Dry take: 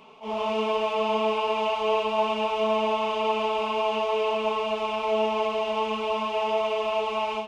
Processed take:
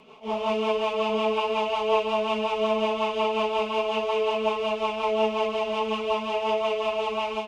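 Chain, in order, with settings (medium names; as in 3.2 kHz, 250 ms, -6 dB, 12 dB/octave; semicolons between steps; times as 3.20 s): rotary cabinet horn 5.5 Hz; trim +3 dB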